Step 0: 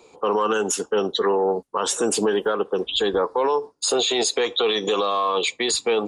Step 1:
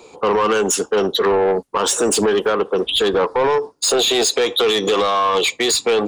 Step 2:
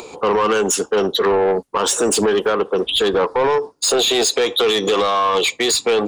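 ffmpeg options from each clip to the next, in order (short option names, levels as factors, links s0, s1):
-af "asoftclip=type=tanh:threshold=0.106,volume=2.51"
-af "acompressor=mode=upward:threshold=0.0398:ratio=2.5"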